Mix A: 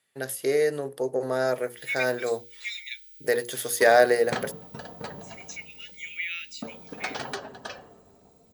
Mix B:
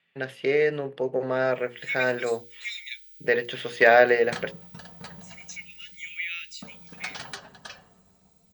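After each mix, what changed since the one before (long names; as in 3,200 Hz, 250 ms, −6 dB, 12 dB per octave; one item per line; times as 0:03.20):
speech: add low-pass with resonance 2,700 Hz, resonance Q 3
second sound: add parametric band 350 Hz −13.5 dB 2.7 octaves
master: add parametric band 180 Hz +12.5 dB 0.34 octaves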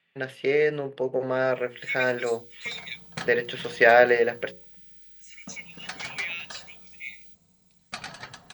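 second sound: entry −1.15 s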